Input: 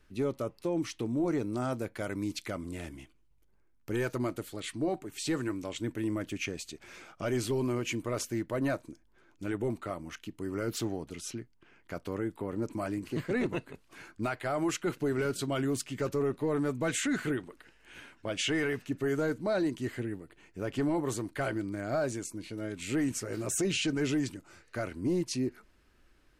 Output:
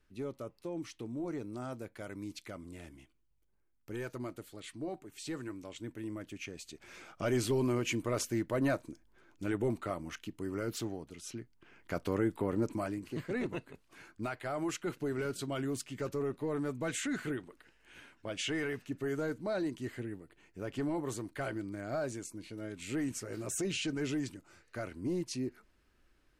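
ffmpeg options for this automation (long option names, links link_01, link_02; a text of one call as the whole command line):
ffmpeg -i in.wav -af "volume=10.5dB,afade=type=in:start_time=6.5:duration=0.72:silence=0.375837,afade=type=out:start_time=10.08:duration=1.09:silence=0.421697,afade=type=in:start_time=11.17:duration=0.79:silence=0.298538,afade=type=out:start_time=12.5:duration=0.49:silence=0.398107" out.wav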